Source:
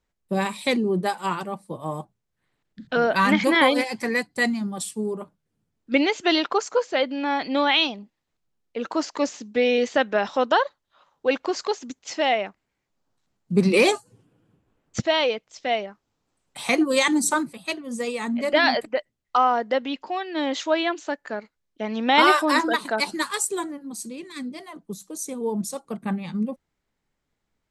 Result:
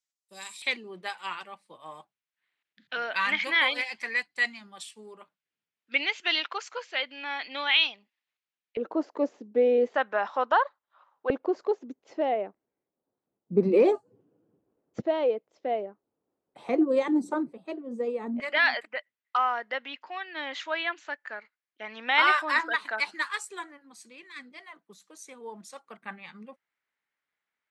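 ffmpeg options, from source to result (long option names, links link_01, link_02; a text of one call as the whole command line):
ffmpeg -i in.wav -af "asetnsamples=nb_out_samples=441:pad=0,asendcmd='0.62 bandpass f 2500;8.77 bandpass f 430;9.94 bandpass f 1100;11.3 bandpass f 420;18.4 bandpass f 1900',bandpass=frequency=6500:width_type=q:width=1.4:csg=0" out.wav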